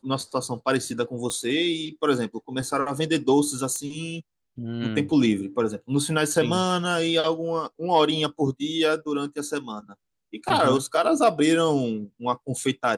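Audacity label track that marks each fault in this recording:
1.300000	1.300000	pop -16 dBFS
3.760000	3.760000	pop -18 dBFS

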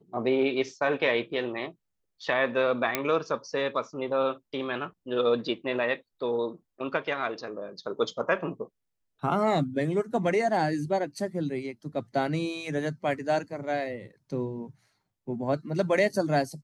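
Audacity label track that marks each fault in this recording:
2.950000	2.950000	pop -8 dBFS

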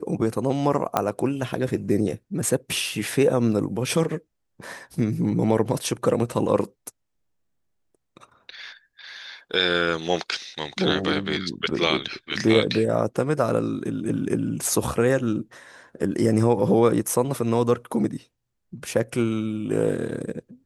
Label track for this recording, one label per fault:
0.970000	0.970000	pop -7 dBFS

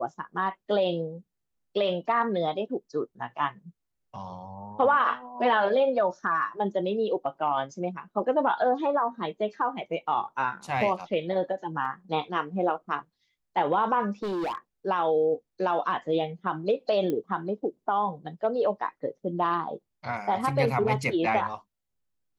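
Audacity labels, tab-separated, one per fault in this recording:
11.850000	11.850000	gap 3.2 ms
14.220000	14.580000	clipped -27.5 dBFS
17.100000	17.100000	pop -18 dBFS

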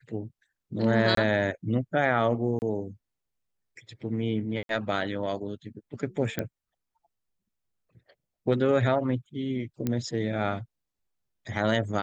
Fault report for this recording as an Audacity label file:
1.150000	1.170000	gap 23 ms
2.590000	2.620000	gap 29 ms
4.630000	4.690000	gap 62 ms
6.390000	6.390000	pop -14 dBFS
9.870000	9.870000	pop -15 dBFS

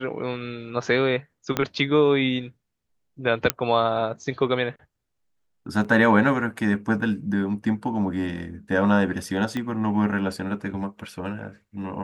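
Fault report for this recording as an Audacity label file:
1.570000	1.570000	pop -8 dBFS
3.500000	3.500000	pop -2 dBFS
5.840000	5.850000	gap 6.5 ms
9.570000	9.570000	pop -16 dBFS

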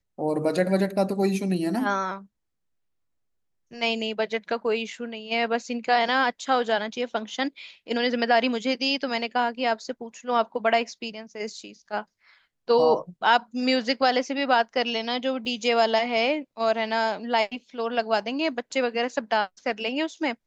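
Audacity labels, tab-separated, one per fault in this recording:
15.450000	15.450000	gap 3.2 ms

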